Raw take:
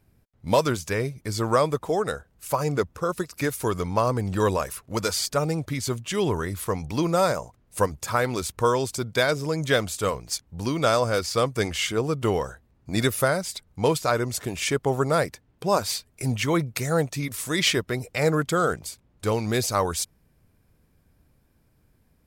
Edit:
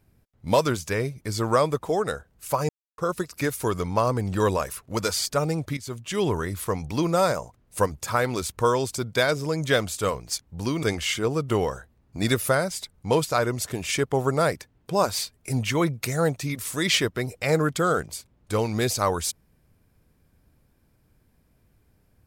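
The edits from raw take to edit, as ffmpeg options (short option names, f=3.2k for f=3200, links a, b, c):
-filter_complex "[0:a]asplit=5[a][b][c][d][e];[a]atrim=end=2.69,asetpts=PTS-STARTPTS,afade=t=out:st=2.686:d=0.004:c=hsin[f];[b]atrim=start=2.69:end=2.98,asetpts=PTS-STARTPTS,volume=0[g];[c]atrim=start=2.98:end=5.77,asetpts=PTS-STARTPTS,afade=t=in:d=0.004:c=hsin,afade=t=out:st=2.786:d=0.004:c=hsin:silence=0.223872[h];[d]atrim=start=5.77:end=10.832,asetpts=PTS-STARTPTS,afade=t=in:d=0.44:silence=0.223872[i];[e]atrim=start=11.558[j];[f][g][h][i]concat=n=4:v=0:a=1[k];[k][j]acrossfade=d=0.004:c1=hsin:c2=hsin"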